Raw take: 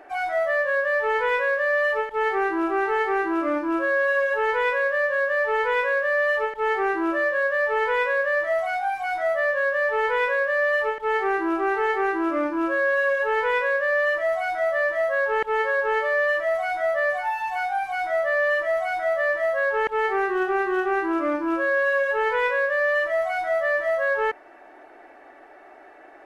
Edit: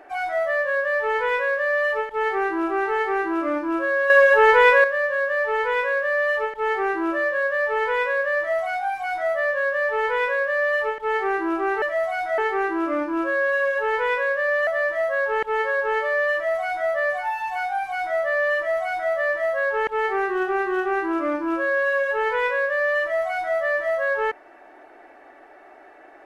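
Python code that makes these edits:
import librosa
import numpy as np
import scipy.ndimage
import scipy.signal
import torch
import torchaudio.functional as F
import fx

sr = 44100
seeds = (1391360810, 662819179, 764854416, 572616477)

y = fx.edit(x, sr, fx.clip_gain(start_s=4.1, length_s=0.74, db=8.5),
    fx.move(start_s=14.11, length_s=0.56, to_s=11.82), tone=tone)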